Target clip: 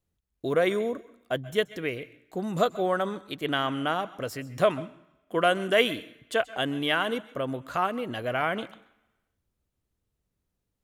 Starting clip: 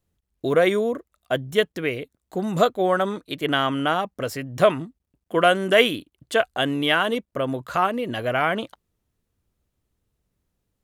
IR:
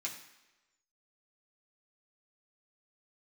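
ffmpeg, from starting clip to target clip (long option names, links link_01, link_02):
-filter_complex "[0:a]asplit=2[link_01][link_02];[1:a]atrim=start_sample=2205,adelay=129[link_03];[link_02][link_03]afir=irnorm=-1:irlink=0,volume=-17dB[link_04];[link_01][link_04]amix=inputs=2:normalize=0,volume=-5.5dB"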